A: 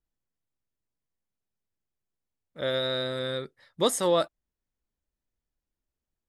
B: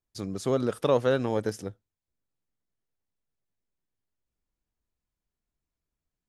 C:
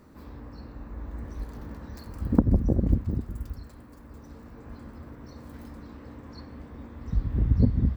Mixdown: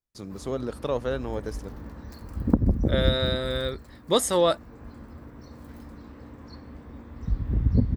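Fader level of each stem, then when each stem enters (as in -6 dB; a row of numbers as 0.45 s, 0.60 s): +2.5 dB, -4.5 dB, -0.5 dB; 0.30 s, 0.00 s, 0.15 s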